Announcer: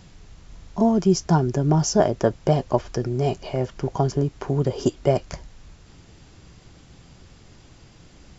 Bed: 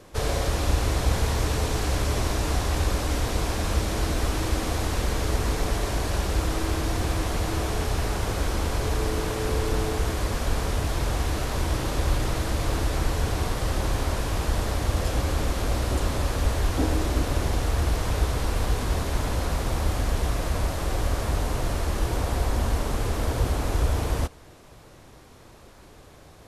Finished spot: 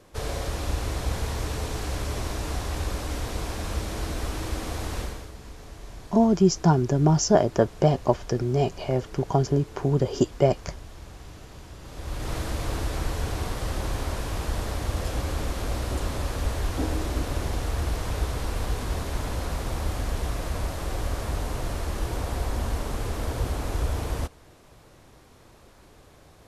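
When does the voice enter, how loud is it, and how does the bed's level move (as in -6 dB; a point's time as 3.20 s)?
5.35 s, -0.5 dB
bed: 5.01 s -5 dB
5.35 s -19 dB
11.79 s -19 dB
12.33 s -3.5 dB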